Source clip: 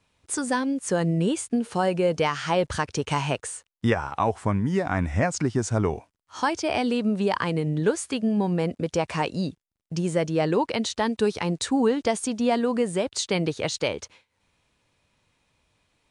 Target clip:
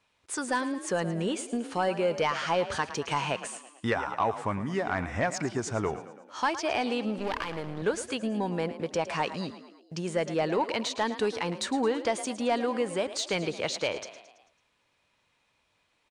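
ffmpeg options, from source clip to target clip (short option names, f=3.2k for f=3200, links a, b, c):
-filter_complex "[0:a]asettb=1/sr,asplit=3[a][b][c];[a]atrim=end=7.184[d];[b]atrim=start=7.18:end=7.82,asetpts=PTS-STARTPTS,afade=t=in:d=0.004:c=qsin,afade=t=out:st=0.636:d=0.004:c=qsin,aeval=exprs='max(val(0),0)':c=same[e];[c]atrim=start=7.816[f];[d][e]acrossfade=d=0.004:c1=hsin:c2=qsin[g];[g][f]acrossfade=d=0.004:c1=qsin:c2=hsin,asplit=6[h][i][j][k][l][m];[i]adelay=110,afreqshift=35,volume=-14.5dB[n];[j]adelay=220,afreqshift=70,volume=-20dB[o];[k]adelay=330,afreqshift=105,volume=-25.5dB[p];[l]adelay=440,afreqshift=140,volume=-31dB[q];[m]adelay=550,afreqshift=175,volume=-36.6dB[r];[h][n][o][p][q][r]amix=inputs=6:normalize=0,asplit=2[s][t];[t]highpass=f=720:p=1,volume=11dB,asoftclip=type=tanh:threshold=-8.5dB[u];[s][u]amix=inputs=2:normalize=0,lowpass=f=4.1k:p=1,volume=-6dB,volume=-6dB"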